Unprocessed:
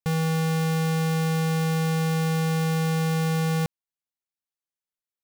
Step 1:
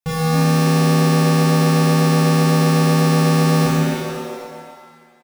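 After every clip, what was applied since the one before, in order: frequency-shifting echo 0.267 s, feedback 40%, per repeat +110 Hz, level -9.5 dB; shimmer reverb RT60 1.7 s, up +7 st, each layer -8 dB, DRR -8.5 dB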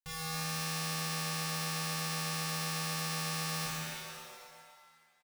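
passive tone stack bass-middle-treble 10-0-10; gain -8.5 dB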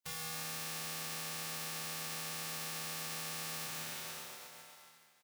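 spectral contrast lowered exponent 0.53; HPF 87 Hz; compressor, threshold -40 dBFS, peak gain reduction 7.5 dB; gain +1.5 dB

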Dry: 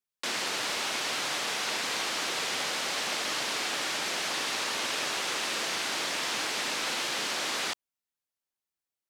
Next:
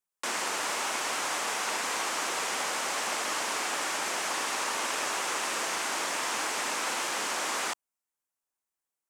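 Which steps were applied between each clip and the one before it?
graphic EQ 125/1000/4000/8000 Hz -8/+5/-7/+5 dB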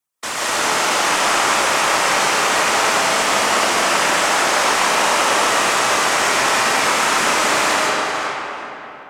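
tape echo 0.375 s, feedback 24%, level -6 dB, low-pass 5900 Hz; whisperiser; digital reverb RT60 3.4 s, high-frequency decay 0.55×, pre-delay 0.1 s, DRR -7 dB; gain +7 dB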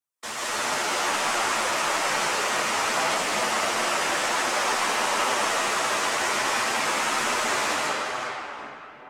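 chorus voices 4, 1.2 Hz, delay 11 ms, depth 3.1 ms; gain -5.5 dB

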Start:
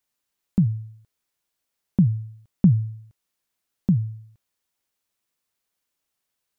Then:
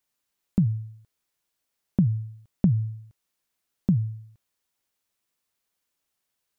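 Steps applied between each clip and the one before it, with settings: compressor 4:1, threshold -17 dBFS, peak gain reduction 5.5 dB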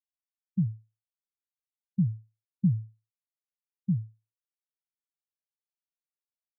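spectral expander 2.5:1; gain -8.5 dB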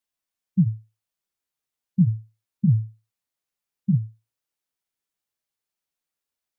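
in parallel at -2.5 dB: limiter -24.5 dBFS, peak gain reduction 8.5 dB; on the sum: flange 0.37 Hz, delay 8.1 ms, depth 6.9 ms, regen -37%; gain +7.5 dB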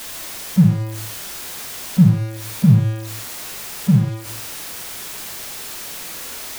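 zero-crossing step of -30 dBFS; on a send at -3.5 dB: reverb, pre-delay 27 ms; on the sum: gain +5.5 dB

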